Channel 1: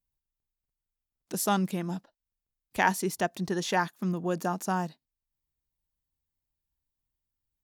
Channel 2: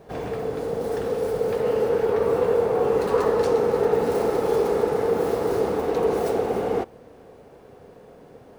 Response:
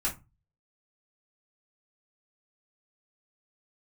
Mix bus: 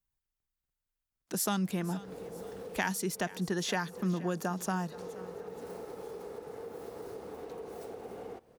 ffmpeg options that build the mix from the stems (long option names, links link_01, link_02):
-filter_complex "[0:a]equalizer=frequency=1500:width=1.5:gain=4,acrossover=split=210|3000[link_01][link_02][link_03];[link_02]acompressor=threshold=-30dB:ratio=6[link_04];[link_01][link_04][link_03]amix=inputs=3:normalize=0,volume=-1dB,asplit=3[link_05][link_06][link_07];[link_06]volume=-18.5dB[link_08];[1:a]acompressor=threshold=-27dB:ratio=6,highshelf=frequency=4500:gain=6.5,adelay=1550,volume=-13.5dB[link_09];[link_07]apad=whole_len=446894[link_10];[link_09][link_10]sidechaincompress=threshold=-45dB:ratio=8:attack=16:release=151[link_11];[link_08]aecho=0:1:475|950|1425|1900|2375|2850|3325:1|0.5|0.25|0.125|0.0625|0.0312|0.0156[link_12];[link_05][link_11][link_12]amix=inputs=3:normalize=0"